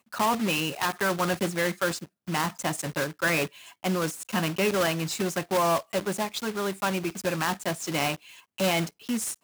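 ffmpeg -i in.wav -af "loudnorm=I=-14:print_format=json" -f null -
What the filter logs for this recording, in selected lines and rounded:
"input_i" : "-28.0",
"input_tp" : "-15.3",
"input_lra" : "2.0",
"input_thresh" : "-38.0",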